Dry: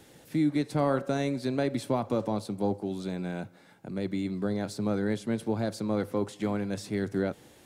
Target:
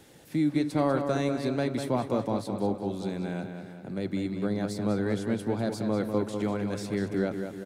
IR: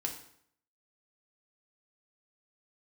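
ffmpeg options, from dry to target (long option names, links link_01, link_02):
-filter_complex "[0:a]asplit=2[link_01][link_02];[link_02]adelay=196,lowpass=frequency=4900:poles=1,volume=-7dB,asplit=2[link_03][link_04];[link_04]adelay=196,lowpass=frequency=4900:poles=1,volume=0.54,asplit=2[link_05][link_06];[link_06]adelay=196,lowpass=frequency=4900:poles=1,volume=0.54,asplit=2[link_07][link_08];[link_08]adelay=196,lowpass=frequency=4900:poles=1,volume=0.54,asplit=2[link_09][link_10];[link_10]adelay=196,lowpass=frequency=4900:poles=1,volume=0.54,asplit=2[link_11][link_12];[link_12]adelay=196,lowpass=frequency=4900:poles=1,volume=0.54,asplit=2[link_13][link_14];[link_14]adelay=196,lowpass=frequency=4900:poles=1,volume=0.54[link_15];[link_01][link_03][link_05][link_07][link_09][link_11][link_13][link_15]amix=inputs=8:normalize=0"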